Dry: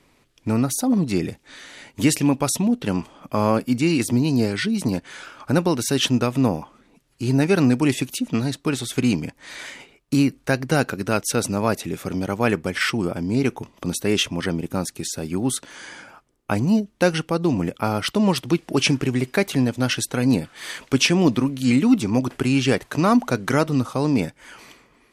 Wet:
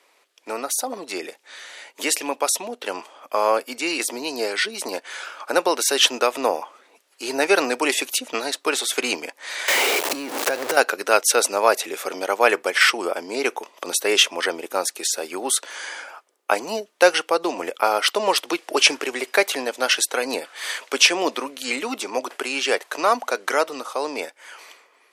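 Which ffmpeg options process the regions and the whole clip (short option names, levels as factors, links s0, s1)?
-filter_complex "[0:a]asettb=1/sr,asplit=3[s0][s1][s2];[s0]atrim=end=9.684[s3];[s1]atrim=start=9.68:end=10.77,asetpts=PTS-STARTPTS,afade=t=in:d=0.004:c=qsin,afade=t=out:st=1.086:d=0.004:c=qsin,aeval=exprs='val(0)+0.5*0.0841*sgn(val(0))':c=same,lowshelf=f=470:g=10.5,acompressor=threshold=0.112:ratio=8:attack=3.2:release=140:knee=1:detection=peak[s4];[s2]atrim=start=10.766[s5];[s3][s4]acrossfade=d=0.004:c1=hsin:c2=qsin[s6];[s6][s5]acrossfade=d=0.004:c1=qsin:c2=hsin,highpass=f=460:w=0.5412,highpass=f=460:w=1.3066,dynaudnorm=f=780:g=13:m=2.11,volume=1.26"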